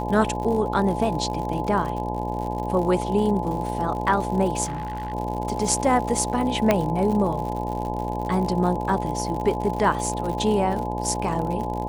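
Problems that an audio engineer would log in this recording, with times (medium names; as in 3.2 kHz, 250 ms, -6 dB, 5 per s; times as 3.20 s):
buzz 60 Hz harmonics 17 -29 dBFS
crackle 97 per s -30 dBFS
whine 850 Hz -30 dBFS
4.64–5.14 s: clipped -26 dBFS
6.71 s: pop -5 dBFS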